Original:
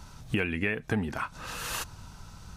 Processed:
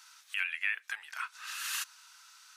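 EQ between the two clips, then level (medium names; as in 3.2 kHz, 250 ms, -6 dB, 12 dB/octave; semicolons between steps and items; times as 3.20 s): high-pass 1.4 kHz 24 dB/octave; 0.0 dB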